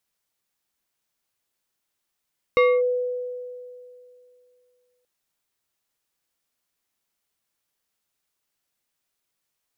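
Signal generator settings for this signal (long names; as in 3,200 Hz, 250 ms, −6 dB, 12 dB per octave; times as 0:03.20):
two-operator FM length 2.48 s, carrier 496 Hz, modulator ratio 3.3, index 0.85, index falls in 0.25 s linear, decay 2.58 s, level −12.5 dB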